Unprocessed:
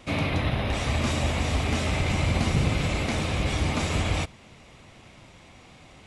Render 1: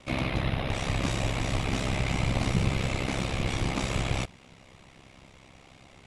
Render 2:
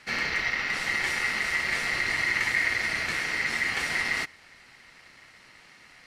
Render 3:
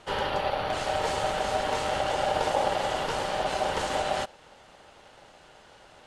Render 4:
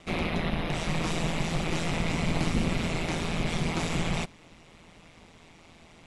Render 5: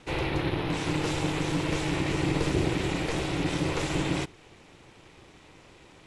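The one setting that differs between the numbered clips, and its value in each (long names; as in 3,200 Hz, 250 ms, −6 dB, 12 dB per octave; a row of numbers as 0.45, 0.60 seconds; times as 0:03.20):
ring modulation, frequency: 33, 2,000, 690, 83, 230 Hertz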